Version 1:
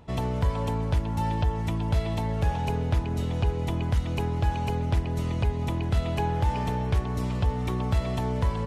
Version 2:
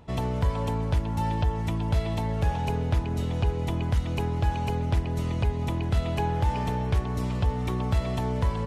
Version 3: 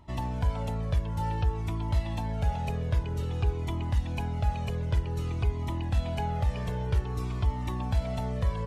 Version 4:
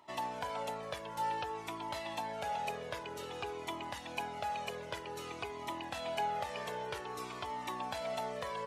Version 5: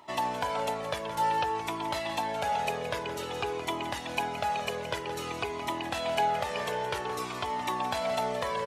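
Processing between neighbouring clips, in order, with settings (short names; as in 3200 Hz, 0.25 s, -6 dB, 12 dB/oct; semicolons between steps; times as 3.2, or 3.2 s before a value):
nothing audible
cascading flanger falling 0.53 Hz
HPF 500 Hz 12 dB/oct; gain +1 dB
echo 0.17 s -12 dB; gain +8 dB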